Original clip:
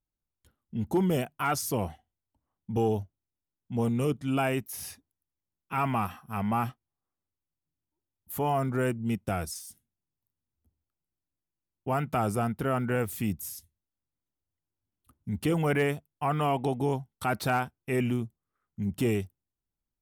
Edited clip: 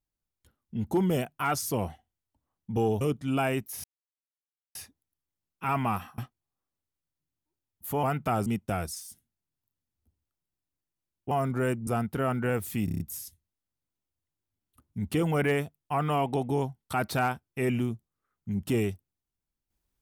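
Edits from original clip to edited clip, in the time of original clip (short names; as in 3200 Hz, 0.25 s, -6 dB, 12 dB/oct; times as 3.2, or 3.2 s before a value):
3.01–4.01 cut
4.84 insert silence 0.91 s
6.27–6.64 cut
8.49–9.05 swap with 11.9–12.33
13.31 stutter 0.03 s, 6 plays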